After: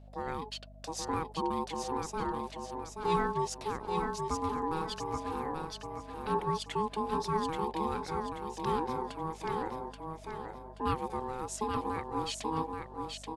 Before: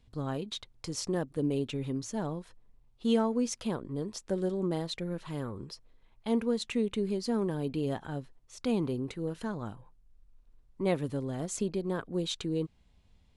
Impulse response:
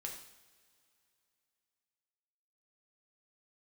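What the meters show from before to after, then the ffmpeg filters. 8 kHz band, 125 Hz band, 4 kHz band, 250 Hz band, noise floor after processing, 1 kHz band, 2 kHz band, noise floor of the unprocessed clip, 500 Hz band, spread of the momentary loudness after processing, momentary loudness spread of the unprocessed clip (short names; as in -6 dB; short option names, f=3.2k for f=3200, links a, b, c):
-2.0 dB, -5.0 dB, -1.5 dB, -6.5 dB, -49 dBFS, +11.5 dB, +2.0 dB, -64 dBFS, -2.5 dB, 9 LU, 10 LU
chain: -af "aecho=1:1:830|1660|2490|3320|4150:0.596|0.22|0.0815|0.0302|0.0112,aeval=exprs='val(0)*sin(2*PI*640*n/s)':c=same,aeval=exprs='val(0)+0.00282*(sin(2*PI*50*n/s)+sin(2*PI*2*50*n/s)/2+sin(2*PI*3*50*n/s)/3+sin(2*PI*4*50*n/s)/4+sin(2*PI*5*50*n/s)/5)':c=same"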